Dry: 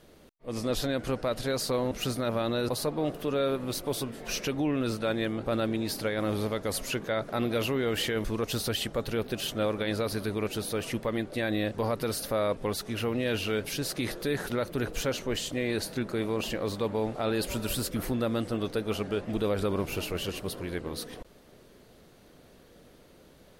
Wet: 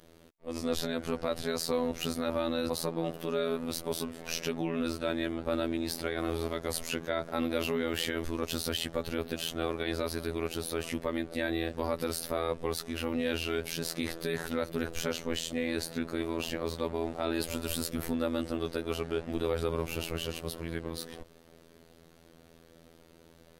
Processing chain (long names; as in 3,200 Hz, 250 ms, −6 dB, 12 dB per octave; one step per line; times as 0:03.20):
phases set to zero 82.7 Hz